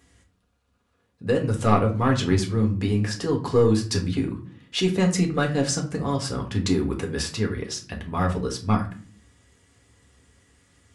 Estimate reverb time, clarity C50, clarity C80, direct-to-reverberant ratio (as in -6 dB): 0.45 s, 11.5 dB, 16.5 dB, 1.0 dB